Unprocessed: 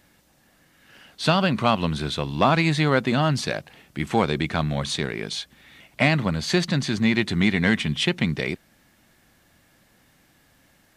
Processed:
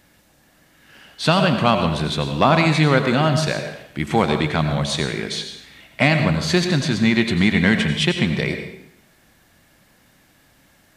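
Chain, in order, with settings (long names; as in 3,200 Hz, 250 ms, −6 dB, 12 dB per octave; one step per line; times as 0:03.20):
dense smooth reverb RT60 0.75 s, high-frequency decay 0.9×, pre-delay 75 ms, DRR 6 dB
level +3 dB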